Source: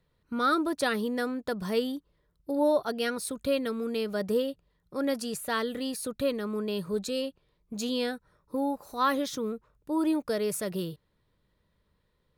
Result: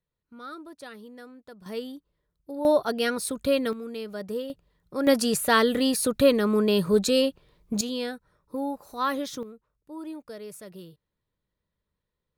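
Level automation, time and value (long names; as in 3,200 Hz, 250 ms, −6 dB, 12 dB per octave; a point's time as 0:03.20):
−15 dB
from 0:01.66 −6 dB
from 0:02.65 +4 dB
from 0:03.73 −4.5 dB
from 0:04.50 +3 dB
from 0:05.07 +9.5 dB
from 0:07.81 −1 dB
from 0:09.43 −11 dB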